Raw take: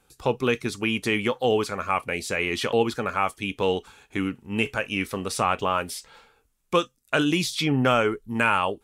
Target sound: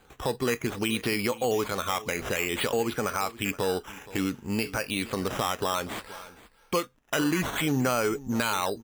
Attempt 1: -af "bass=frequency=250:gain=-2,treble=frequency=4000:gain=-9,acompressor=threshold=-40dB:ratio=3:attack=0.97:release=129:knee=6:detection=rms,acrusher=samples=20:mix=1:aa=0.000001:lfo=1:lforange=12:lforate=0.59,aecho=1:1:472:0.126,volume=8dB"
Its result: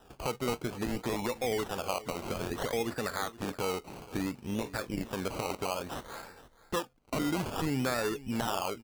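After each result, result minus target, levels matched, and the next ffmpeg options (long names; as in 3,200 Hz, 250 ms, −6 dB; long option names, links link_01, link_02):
downward compressor: peak gain reduction +5.5 dB; sample-and-hold swept by an LFO: distortion +6 dB
-af "bass=frequency=250:gain=-2,treble=frequency=4000:gain=-9,acompressor=threshold=-32dB:ratio=3:attack=0.97:release=129:knee=6:detection=rms,acrusher=samples=20:mix=1:aa=0.000001:lfo=1:lforange=12:lforate=0.59,aecho=1:1:472:0.126,volume=8dB"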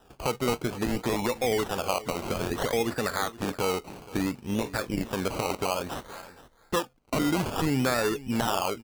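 sample-and-hold swept by an LFO: distortion +6 dB
-af "bass=frequency=250:gain=-2,treble=frequency=4000:gain=-9,acompressor=threshold=-32dB:ratio=3:attack=0.97:release=129:knee=6:detection=rms,acrusher=samples=8:mix=1:aa=0.000001:lfo=1:lforange=4.8:lforate=0.59,aecho=1:1:472:0.126,volume=8dB"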